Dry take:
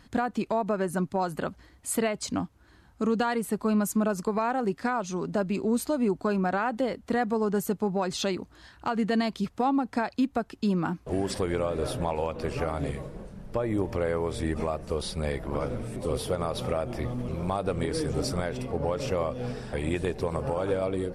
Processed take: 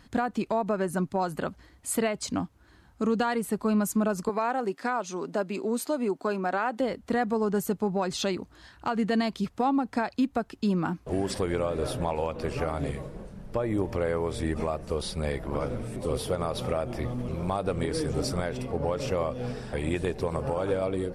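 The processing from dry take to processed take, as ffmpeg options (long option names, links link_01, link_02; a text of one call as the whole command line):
ffmpeg -i in.wav -filter_complex "[0:a]asettb=1/sr,asplit=3[link_01][link_02][link_03];[link_01]atrim=end=4.294[link_04];[link_02]atrim=start=4.29:end=6.8,asetpts=PTS-STARTPTS,afade=type=in:duration=0.004:curve=qsin,afade=type=out:start_time=2.506:duration=0.004:curve=qsin,highpass=270[link_05];[link_03]atrim=start=6.796[link_06];[link_04][link_05]acrossfade=duration=0.004:curve1=hsin:curve2=qsin[link_07];[link_07][link_06]acrossfade=duration=0.004:curve1=qsin:curve2=hsin" out.wav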